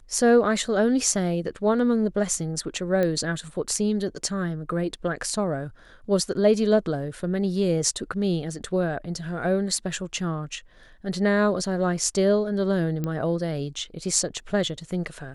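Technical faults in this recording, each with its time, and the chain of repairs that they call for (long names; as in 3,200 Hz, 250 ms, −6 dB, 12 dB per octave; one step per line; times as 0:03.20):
0:03.03: click −14 dBFS
0:13.04: click −16 dBFS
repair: click removal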